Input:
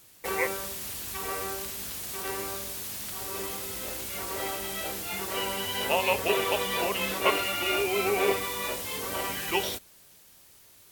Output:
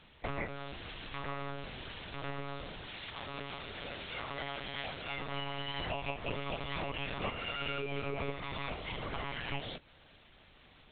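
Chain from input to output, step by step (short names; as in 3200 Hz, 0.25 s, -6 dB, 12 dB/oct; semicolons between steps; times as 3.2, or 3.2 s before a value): compressor 12:1, threshold -37 dBFS, peak gain reduction 19.5 dB; monotone LPC vocoder at 8 kHz 140 Hz; 2.88–5.05 tilt +1.5 dB/oct; gain +3.5 dB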